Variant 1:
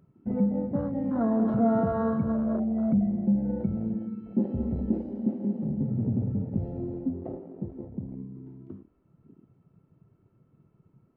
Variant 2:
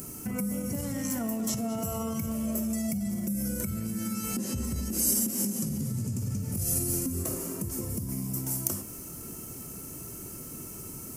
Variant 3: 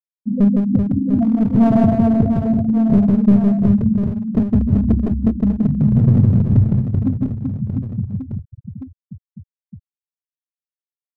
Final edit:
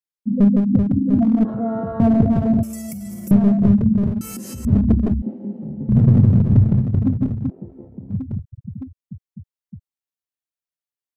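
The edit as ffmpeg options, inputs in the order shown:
-filter_complex "[0:a]asplit=3[s0][s1][s2];[1:a]asplit=2[s3][s4];[2:a]asplit=6[s5][s6][s7][s8][s9][s10];[s5]atrim=end=1.452[s11];[s0]atrim=start=1.448:end=2.002[s12];[s6]atrim=start=1.998:end=2.632[s13];[s3]atrim=start=2.628:end=3.312[s14];[s7]atrim=start=3.308:end=4.212[s15];[s4]atrim=start=4.208:end=4.652[s16];[s8]atrim=start=4.648:end=5.222[s17];[s1]atrim=start=5.218:end=5.892[s18];[s9]atrim=start=5.888:end=7.502[s19];[s2]atrim=start=7.498:end=8.102[s20];[s10]atrim=start=8.098[s21];[s11][s12]acrossfade=d=0.004:c1=hsin:c2=hsin[s22];[s22][s13]acrossfade=d=0.004:c1=hsin:c2=hsin[s23];[s23][s14]acrossfade=d=0.004:c1=hsin:c2=hsin[s24];[s24][s15]acrossfade=d=0.004:c1=hsin:c2=hsin[s25];[s25][s16]acrossfade=d=0.004:c1=hsin:c2=hsin[s26];[s26][s17]acrossfade=d=0.004:c1=hsin:c2=hsin[s27];[s27][s18]acrossfade=d=0.004:c1=hsin:c2=hsin[s28];[s28][s19]acrossfade=d=0.004:c1=hsin:c2=hsin[s29];[s29][s20]acrossfade=d=0.004:c1=hsin:c2=hsin[s30];[s30][s21]acrossfade=d=0.004:c1=hsin:c2=hsin"

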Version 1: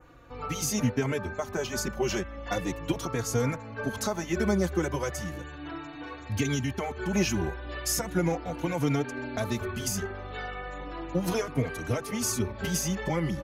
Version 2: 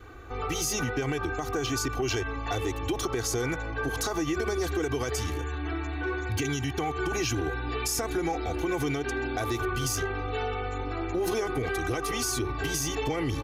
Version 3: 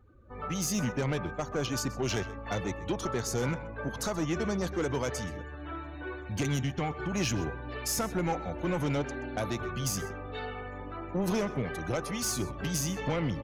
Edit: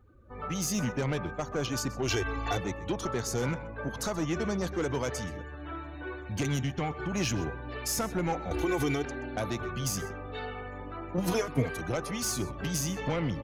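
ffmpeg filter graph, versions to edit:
-filter_complex "[1:a]asplit=2[s0][s1];[2:a]asplit=4[s2][s3][s4][s5];[s2]atrim=end=2.082[s6];[s0]atrim=start=2.078:end=2.572[s7];[s3]atrim=start=2.568:end=8.512[s8];[s1]atrim=start=8.508:end=9.052[s9];[s4]atrim=start=9.048:end=11.182[s10];[0:a]atrim=start=11.178:end=11.812[s11];[s5]atrim=start=11.808[s12];[s6][s7]acrossfade=d=0.004:c1=hsin:c2=hsin[s13];[s13][s8]acrossfade=d=0.004:c1=hsin:c2=hsin[s14];[s14][s9]acrossfade=d=0.004:c1=hsin:c2=hsin[s15];[s15][s10]acrossfade=d=0.004:c1=hsin:c2=hsin[s16];[s16][s11]acrossfade=d=0.004:c1=hsin:c2=hsin[s17];[s17][s12]acrossfade=d=0.004:c1=hsin:c2=hsin"

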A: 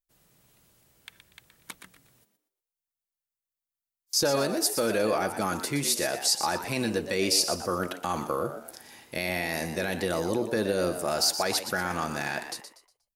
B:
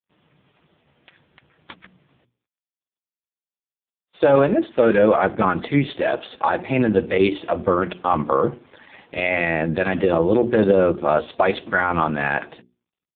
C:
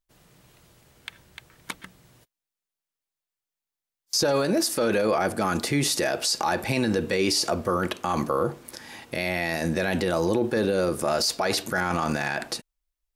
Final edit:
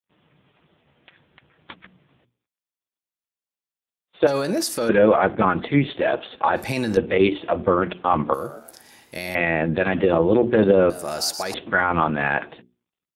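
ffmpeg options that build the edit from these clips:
-filter_complex "[2:a]asplit=2[s0][s1];[0:a]asplit=2[s2][s3];[1:a]asplit=5[s4][s5][s6][s7][s8];[s4]atrim=end=4.272[s9];[s0]atrim=start=4.268:end=4.892[s10];[s5]atrim=start=4.888:end=6.562[s11];[s1]atrim=start=6.558:end=6.972[s12];[s6]atrim=start=6.968:end=8.342[s13];[s2]atrim=start=8.338:end=9.352[s14];[s7]atrim=start=9.348:end=10.902[s15];[s3]atrim=start=10.898:end=11.542[s16];[s8]atrim=start=11.538[s17];[s9][s10]acrossfade=d=0.004:c1=hsin:c2=hsin[s18];[s18][s11]acrossfade=d=0.004:c1=hsin:c2=hsin[s19];[s19][s12]acrossfade=d=0.004:c1=hsin:c2=hsin[s20];[s20][s13]acrossfade=d=0.004:c1=hsin:c2=hsin[s21];[s21][s14]acrossfade=d=0.004:c1=hsin:c2=hsin[s22];[s22][s15]acrossfade=d=0.004:c1=hsin:c2=hsin[s23];[s23][s16]acrossfade=d=0.004:c1=hsin:c2=hsin[s24];[s24][s17]acrossfade=d=0.004:c1=hsin:c2=hsin"

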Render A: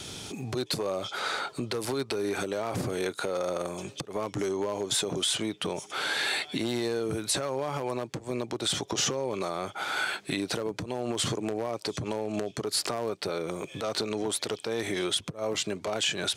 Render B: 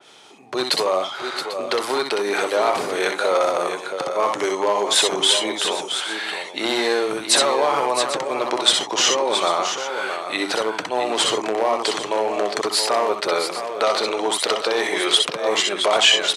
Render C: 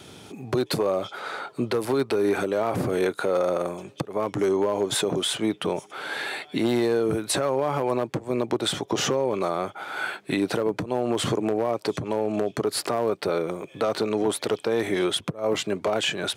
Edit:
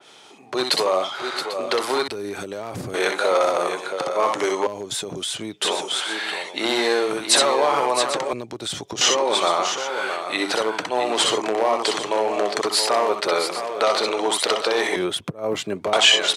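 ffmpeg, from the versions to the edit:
-filter_complex "[0:a]asplit=3[s0][s1][s2];[1:a]asplit=5[s3][s4][s5][s6][s7];[s3]atrim=end=2.082[s8];[s0]atrim=start=2.078:end=2.942[s9];[s4]atrim=start=2.938:end=4.672[s10];[s1]atrim=start=4.668:end=5.622[s11];[s5]atrim=start=5.618:end=8.332[s12];[s2]atrim=start=8.328:end=9.012[s13];[s6]atrim=start=9.008:end=14.962[s14];[2:a]atrim=start=14.958:end=15.932[s15];[s7]atrim=start=15.928[s16];[s8][s9]acrossfade=d=0.004:c1=hsin:c2=hsin[s17];[s17][s10]acrossfade=d=0.004:c1=hsin:c2=hsin[s18];[s18][s11]acrossfade=d=0.004:c1=hsin:c2=hsin[s19];[s19][s12]acrossfade=d=0.004:c1=hsin:c2=hsin[s20];[s20][s13]acrossfade=d=0.004:c1=hsin:c2=hsin[s21];[s21][s14]acrossfade=d=0.004:c1=hsin:c2=hsin[s22];[s22][s15]acrossfade=d=0.004:c1=hsin:c2=hsin[s23];[s23][s16]acrossfade=d=0.004:c1=hsin:c2=hsin"

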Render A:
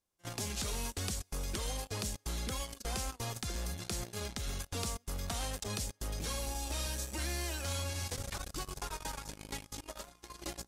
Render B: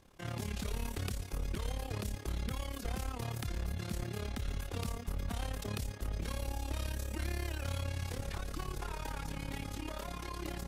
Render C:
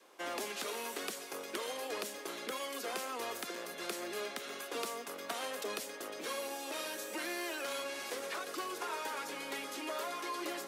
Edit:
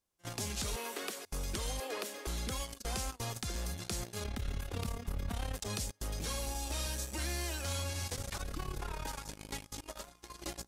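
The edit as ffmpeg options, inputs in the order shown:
-filter_complex "[2:a]asplit=2[s0][s1];[1:a]asplit=2[s2][s3];[0:a]asplit=5[s4][s5][s6][s7][s8];[s4]atrim=end=0.762[s9];[s0]atrim=start=0.758:end=1.252[s10];[s5]atrim=start=1.248:end=1.802[s11];[s1]atrim=start=1.798:end=2.272[s12];[s6]atrim=start=2.268:end=4.242[s13];[s2]atrim=start=4.238:end=5.552[s14];[s7]atrim=start=5.548:end=8.422[s15];[s3]atrim=start=8.418:end=9.072[s16];[s8]atrim=start=9.068[s17];[s9][s10]acrossfade=d=0.004:c1=hsin:c2=hsin[s18];[s18][s11]acrossfade=d=0.004:c1=hsin:c2=hsin[s19];[s19][s12]acrossfade=d=0.004:c1=hsin:c2=hsin[s20];[s20][s13]acrossfade=d=0.004:c1=hsin:c2=hsin[s21];[s21][s14]acrossfade=d=0.004:c1=hsin:c2=hsin[s22];[s22][s15]acrossfade=d=0.004:c1=hsin:c2=hsin[s23];[s23][s16]acrossfade=d=0.004:c1=hsin:c2=hsin[s24];[s24][s17]acrossfade=d=0.004:c1=hsin:c2=hsin"

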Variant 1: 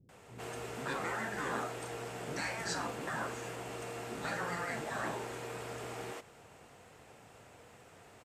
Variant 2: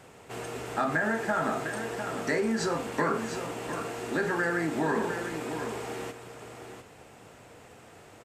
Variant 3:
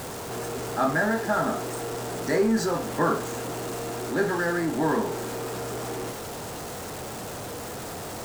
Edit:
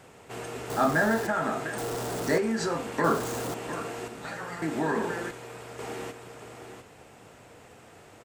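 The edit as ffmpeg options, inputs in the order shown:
-filter_complex "[2:a]asplit=3[s0][s1][s2];[0:a]asplit=2[s3][s4];[1:a]asplit=6[s5][s6][s7][s8][s9][s10];[s5]atrim=end=0.702[s11];[s0]atrim=start=0.698:end=1.272[s12];[s6]atrim=start=1.268:end=1.782[s13];[s1]atrim=start=1.778:end=2.382[s14];[s7]atrim=start=2.378:end=3.042[s15];[s2]atrim=start=3.038:end=3.542[s16];[s8]atrim=start=3.538:end=4.082[s17];[s3]atrim=start=4.078:end=4.622[s18];[s9]atrim=start=4.618:end=5.312[s19];[s4]atrim=start=5.308:end=5.792[s20];[s10]atrim=start=5.788[s21];[s11][s12]acrossfade=d=0.004:c1=hsin:c2=hsin[s22];[s22][s13]acrossfade=d=0.004:c1=hsin:c2=hsin[s23];[s23][s14]acrossfade=d=0.004:c1=hsin:c2=hsin[s24];[s24][s15]acrossfade=d=0.004:c1=hsin:c2=hsin[s25];[s25][s16]acrossfade=d=0.004:c1=hsin:c2=hsin[s26];[s26][s17]acrossfade=d=0.004:c1=hsin:c2=hsin[s27];[s27][s18]acrossfade=d=0.004:c1=hsin:c2=hsin[s28];[s28][s19]acrossfade=d=0.004:c1=hsin:c2=hsin[s29];[s29][s20]acrossfade=d=0.004:c1=hsin:c2=hsin[s30];[s30][s21]acrossfade=d=0.004:c1=hsin:c2=hsin"

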